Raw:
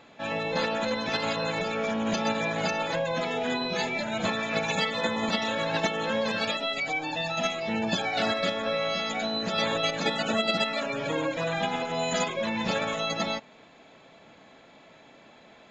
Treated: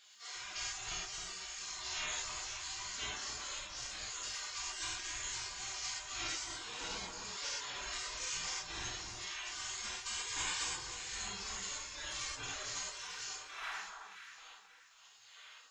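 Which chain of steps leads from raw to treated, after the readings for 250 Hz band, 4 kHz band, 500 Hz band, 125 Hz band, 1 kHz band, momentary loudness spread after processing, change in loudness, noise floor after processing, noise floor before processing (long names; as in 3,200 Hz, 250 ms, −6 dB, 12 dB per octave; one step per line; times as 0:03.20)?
−28.0 dB, −9.0 dB, −28.0 dB, −19.5 dB, −16.5 dB, 9 LU, −12.0 dB, −61 dBFS, −54 dBFS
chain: wind on the microphone 230 Hz −42 dBFS
gate on every frequency bin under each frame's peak −30 dB weak
reverb reduction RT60 1.9 s
delay that swaps between a low-pass and a high-pass 265 ms, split 1,400 Hz, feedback 58%, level −4.5 dB
reverb whose tail is shaped and stops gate 150 ms flat, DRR −7.5 dB
level +4 dB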